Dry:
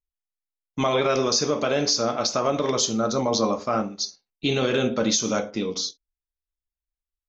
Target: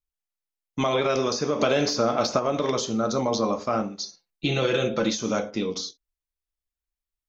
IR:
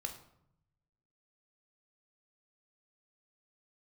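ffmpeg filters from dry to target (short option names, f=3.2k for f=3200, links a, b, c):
-filter_complex "[0:a]asplit=3[a][b][c];[a]afade=t=out:st=1.59:d=0.02[d];[b]acontrast=79,afade=t=in:st=1.59:d=0.02,afade=t=out:st=2.38:d=0.02[e];[c]afade=t=in:st=2.38:d=0.02[f];[d][e][f]amix=inputs=3:normalize=0,asettb=1/sr,asplit=3[g][h][i];[g]atrim=end=4.054[j];[h]atrim=start=4.05:end=5.1,asetpts=PTS-STARTPTS,afade=t=in:d=0.004:c=qsin,afade=t=out:st=1.046:d=0.004:c=qsin,aecho=1:1:5.9:0.65,atrim=end_sample=46305[k];[i]atrim=start=5.096[l];[j][k]acrossfade=d=0.004:c1=hsin:c2=qsin[m];[m][l]acrossfade=d=0.004:c1=qsin:c2=hsin,acrossover=split=1100|2500[n][o][p];[n]acompressor=threshold=-20dB:ratio=4[q];[o]acompressor=threshold=-32dB:ratio=4[r];[p]acompressor=threshold=-32dB:ratio=4[s];[q][r][s]amix=inputs=3:normalize=0"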